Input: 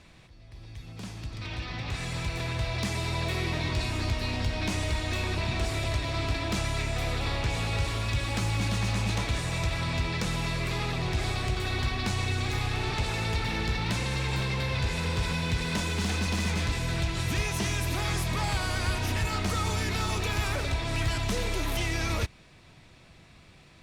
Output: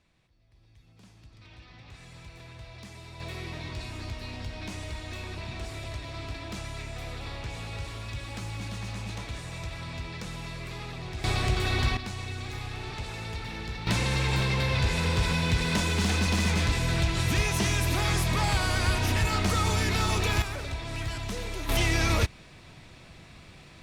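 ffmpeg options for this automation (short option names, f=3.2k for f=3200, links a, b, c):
-af "asetnsamples=n=441:p=0,asendcmd='3.2 volume volume -8dB;11.24 volume volume 3dB;11.97 volume volume -7dB;13.87 volume volume 3dB;20.42 volume volume -5dB;21.69 volume volume 4.5dB',volume=-15dB"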